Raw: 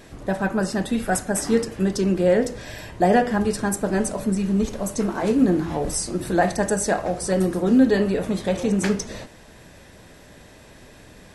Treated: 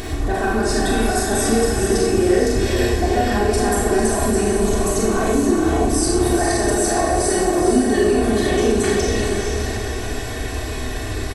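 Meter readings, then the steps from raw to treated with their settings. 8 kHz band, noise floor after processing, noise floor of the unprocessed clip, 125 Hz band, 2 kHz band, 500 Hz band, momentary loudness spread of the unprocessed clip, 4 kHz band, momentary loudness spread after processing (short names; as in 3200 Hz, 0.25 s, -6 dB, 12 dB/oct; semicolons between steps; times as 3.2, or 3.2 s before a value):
+7.0 dB, -26 dBFS, -47 dBFS, +4.5 dB, +5.5 dB, +5.0 dB, 7 LU, +9.0 dB, 9 LU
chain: bell 62 Hz +9.5 dB 1.8 oct; comb 2.7 ms, depth 86%; in parallel at -2 dB: upward compressor, threshold -20 dBFS; on the sum: limiter -15.5 dBFS, peak gain reduction 17.5 dB; on a send: diffused feedback echo 0.467 s, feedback 46%, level -4 dB; on the sum: Schroeder reverb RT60 0.76 s, combs from 28 ms, DRR -2 dB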